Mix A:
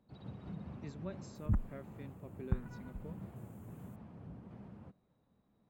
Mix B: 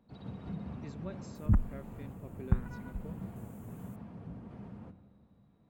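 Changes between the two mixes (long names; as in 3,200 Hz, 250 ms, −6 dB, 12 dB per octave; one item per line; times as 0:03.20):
second sound +5.0 dB
reverb: on, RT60 1.9 s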